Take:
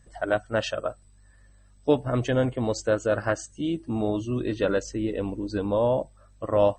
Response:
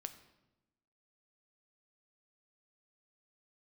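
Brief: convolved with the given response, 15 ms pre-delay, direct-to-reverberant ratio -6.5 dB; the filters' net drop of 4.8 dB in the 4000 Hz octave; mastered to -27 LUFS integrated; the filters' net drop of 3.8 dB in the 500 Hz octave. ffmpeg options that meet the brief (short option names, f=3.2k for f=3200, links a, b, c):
-filter_complex "[0:a]equalizer=f=500:t=o:g=-4.5,equalizer=f=4k:t=o:g=-6.5,asplit=2[a][b];[1:a]atrim=start_sample=2205,adelay=15[c];[b][c]afir=irnorm=-1:irlink=0,volume=10dB[d];[a][d]amix=inputs=2:normalize=0,volume=-5dB"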